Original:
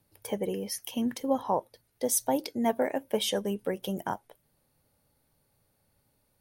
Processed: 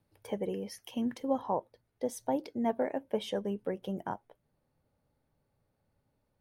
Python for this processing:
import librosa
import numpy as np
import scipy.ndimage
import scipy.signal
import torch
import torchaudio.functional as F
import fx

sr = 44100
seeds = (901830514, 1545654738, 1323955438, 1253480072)

y = fx.lowpass(x, sr, hz=fx.steps((0.0, 2600.0), (1.46, 1400.0)), slope=6)
y = y * librosa.db_to_amplitude(-3.0)